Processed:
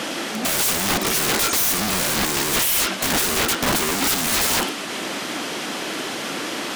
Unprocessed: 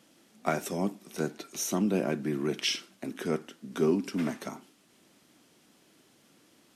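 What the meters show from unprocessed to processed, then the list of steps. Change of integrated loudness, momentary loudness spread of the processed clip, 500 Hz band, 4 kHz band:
+12.0 dB, 9 LU, +5.0 dB, +16.5 dB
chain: mid-hump overdrive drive 39 dB, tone 2,700 Hz, clips at −12 dBFS
wrap-around overflow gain 23 dB
level +8 dB

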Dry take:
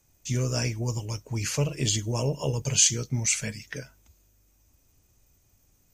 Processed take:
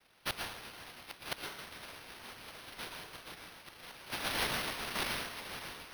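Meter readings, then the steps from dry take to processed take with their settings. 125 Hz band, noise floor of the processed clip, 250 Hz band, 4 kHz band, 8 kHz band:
−25.5 dB, −57 dBFS, −15.0 dB, −7.0 dB, −21.0 dB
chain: feedback delay that plays each chunk backwards 559 ms, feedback 56%, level −7 dB
cochlear-implant simulation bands 1
low-shelf EQ 420 Hz −5.5 dB
hum removal 189.9 Hz, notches 29
gate with flip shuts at −23 dBFS, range −26 dB
dense smooth reverb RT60 0.65 s, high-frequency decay 0.8×, pre-delay 105 ms, DRR 2 dB
bad sample-rate conversion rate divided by 6×, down none, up hold
level +2 dB

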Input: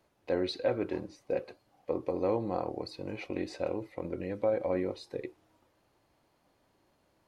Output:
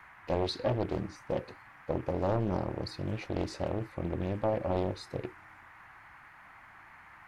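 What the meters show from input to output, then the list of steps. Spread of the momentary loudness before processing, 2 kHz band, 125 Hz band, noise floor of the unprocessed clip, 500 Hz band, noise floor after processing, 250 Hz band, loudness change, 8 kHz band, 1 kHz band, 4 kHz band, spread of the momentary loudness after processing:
10 LU, +1.0 dB, +9.5 dB, −72 dBFS, −1.5 dB, −55 dBFS, +1.0 dB, +0.5 dB, can't be measured, +3.0 dB, +2.0 dB, 22 LU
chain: noise in a band 760–2,100 Hz −52 dBFS
bass and treble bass +14 dB, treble +8 dB
highs frequency-modulated by the lows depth 0.98 ms
level −2.5 dB

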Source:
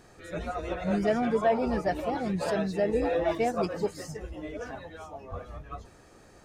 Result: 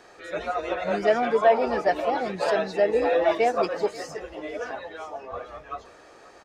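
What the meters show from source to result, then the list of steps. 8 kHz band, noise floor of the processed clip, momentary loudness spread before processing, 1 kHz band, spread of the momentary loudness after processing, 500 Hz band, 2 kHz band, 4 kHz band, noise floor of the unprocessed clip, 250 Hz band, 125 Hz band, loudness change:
can't be measured, −51 dBFS, 16 LU, +6.5 dB, 17 LU, +5.5 dB, +7.0 dB, +6.0 dB, −55 dBFS, −3.0 dB, −7.5 dB, +5.0 dB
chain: three-way crossover with the lows and the highs turned down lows −18 dB, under 340 Hz, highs −12 dB, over 6,000 Hz
on a send: repeating echo 536 ms, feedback 46%, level −20 dB
on the sum: level +7 dB

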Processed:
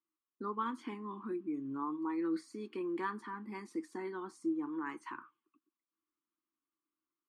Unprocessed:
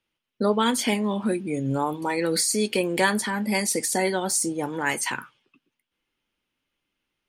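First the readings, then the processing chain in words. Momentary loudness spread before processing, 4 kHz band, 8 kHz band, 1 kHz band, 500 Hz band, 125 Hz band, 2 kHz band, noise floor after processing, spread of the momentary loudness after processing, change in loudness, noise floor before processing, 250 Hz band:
5 LU, −30.0 dB, −37.5 dB, −13.0 dB, −16.5 dB, −22.5 dB, −20.0 dB, below −85 dBFS, 8 LU, −15.5 dB, −82 dBFS, −11.5 dB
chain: pair of resonant band-passes 600 Hz, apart 1.8 octaves
level −4 dB

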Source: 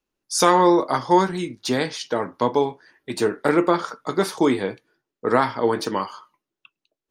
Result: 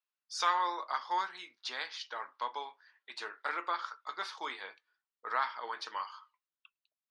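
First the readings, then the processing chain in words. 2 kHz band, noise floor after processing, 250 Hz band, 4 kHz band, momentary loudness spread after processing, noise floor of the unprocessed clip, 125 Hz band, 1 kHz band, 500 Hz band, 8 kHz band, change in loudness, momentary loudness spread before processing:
−9.5 dB, below −85 dBFS, −34.5 dB, −10.0 dB, 13 LU, below −85 dBFS, below −40 dB, −12.0 dB, −26.5 dB, −19.0 dB, −15.5 dB, 11 LU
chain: Chebyshev band-pass filter 1,100–4,400 Hz, order 2
level −9 dB

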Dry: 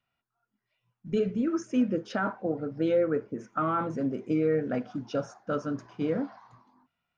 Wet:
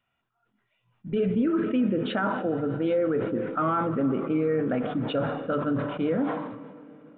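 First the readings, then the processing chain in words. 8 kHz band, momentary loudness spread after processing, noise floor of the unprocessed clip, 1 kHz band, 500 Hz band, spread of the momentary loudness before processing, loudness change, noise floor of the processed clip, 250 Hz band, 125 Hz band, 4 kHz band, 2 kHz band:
can't be measured, 6 LU, −85 dBFS, +4.0 dB, +2.5 dB, 7 LU, +3.0 dB, −77 dBFS, +3.5 dB, +4.5 dB, +6.5 dB, +3.5 dB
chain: mains-hum notches 50/100/150 Hz
brickwall limiter −22.5 dBFS, peak gain reduction 6 dB
comb and all-pass reverb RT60 4.3 s, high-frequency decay 0.75×, pre-delay 100 ms, DRR 15 dB
downsampling to 8,000 Hz
level that may fall only so fast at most 46 dB per second
level +5 dB

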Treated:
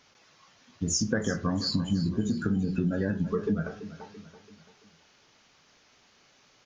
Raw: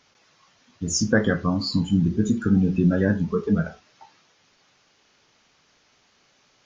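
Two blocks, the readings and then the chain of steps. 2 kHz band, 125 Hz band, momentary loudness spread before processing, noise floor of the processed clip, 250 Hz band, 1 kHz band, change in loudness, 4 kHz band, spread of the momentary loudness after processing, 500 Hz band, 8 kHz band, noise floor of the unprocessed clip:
−8.0 dB, −7.0 dB, 5 LU, −63 dBFS, −7.0 dB, −5.5 dB, −6.5 dB, −2.5 dB, 13 LU, −6.5 dB, can't be measured, −63 dBFS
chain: downward compressor 6 to 1, threshold −24 dBFS, peak gain reduction 10.5 dB
repeating echo 336 ms, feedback 47%, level −14 dB

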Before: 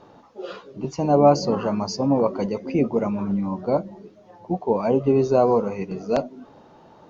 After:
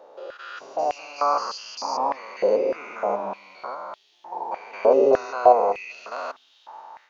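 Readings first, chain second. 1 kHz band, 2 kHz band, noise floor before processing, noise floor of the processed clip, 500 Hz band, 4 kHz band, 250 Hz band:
+3.0 dB, +5.0 dB, −51 dBFS, −60 dBFS, −1.0 dB, −0.5 dB, −14.0 dB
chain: spectrum averaged block by block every 200 ms
automatic gain control gain up to 7 dB
backwards echo 218 ms −7.5 dB
high-pass on a step sequencer 3.3 Hz 540–3,300 Hz
level −3.5 dB

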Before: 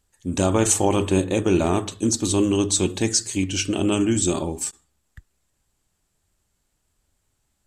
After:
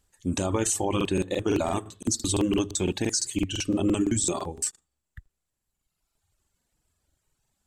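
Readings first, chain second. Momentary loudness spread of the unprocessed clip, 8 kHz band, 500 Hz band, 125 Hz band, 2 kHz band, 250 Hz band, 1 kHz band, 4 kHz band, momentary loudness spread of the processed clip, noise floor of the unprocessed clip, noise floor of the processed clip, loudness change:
6 LU, −5.0 dB, −6.0 dB, −6.0 dB, −5.5 dB, −5.0 dB, −5.0 dB, −5.0 dB, 6 LU, −73 dBFS, −82 dBFS, −5.0 dB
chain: reverb reduction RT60 1.7 s
brickwall limiter −15.5 dBFS, peak gain reduction 9.5 dB
regular buffer underruns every 0.17 s, samples 2,048, repeat, from 0:00.96

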